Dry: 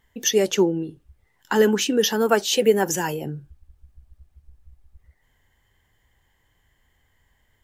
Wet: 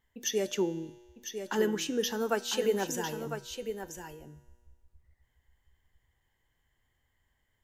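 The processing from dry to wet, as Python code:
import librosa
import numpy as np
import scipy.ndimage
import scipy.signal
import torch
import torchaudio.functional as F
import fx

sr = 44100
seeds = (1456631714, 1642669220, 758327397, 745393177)

y = fx.comb_fb(x, sr, f0_hz=120.0, decay_s=1.5, harmonics='all', damping=0.0, mix_pct=60)
y = y + 10.0 ** (-8.5 / 20.0) * np.pad(y, (int(1002 * sr / 1000.0), 0))[:len(y)]
y = y * librosa.db_to_amplitude(-3.5)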